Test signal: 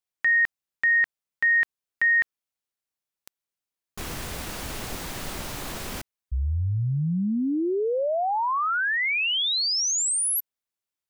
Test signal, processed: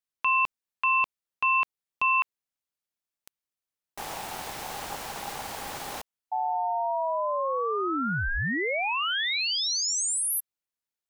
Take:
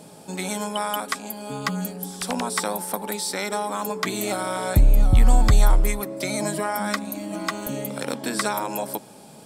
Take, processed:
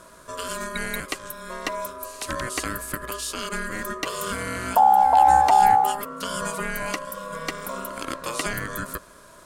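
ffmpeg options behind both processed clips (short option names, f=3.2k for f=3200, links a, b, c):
-af "aeval=exprs='val(0)*sin(2*PI*810*n/s)':c=same"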